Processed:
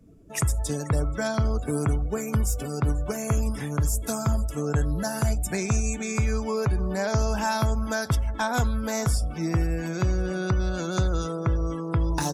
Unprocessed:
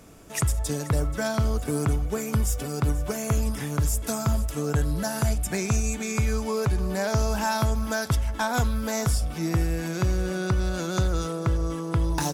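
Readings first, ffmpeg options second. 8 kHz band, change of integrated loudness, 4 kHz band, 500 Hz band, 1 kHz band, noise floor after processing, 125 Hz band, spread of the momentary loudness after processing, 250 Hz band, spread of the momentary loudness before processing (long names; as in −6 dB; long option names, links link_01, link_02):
−1.0 dB, 0.0 dB, −2.0 dB, 0.0 dB, 0.0 dB, −36 dBFS, 0.0 dB, 2 LU, 0.0 dB, 2 LU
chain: -af "afftdn=noise_reduction=21:noise_floor=-43"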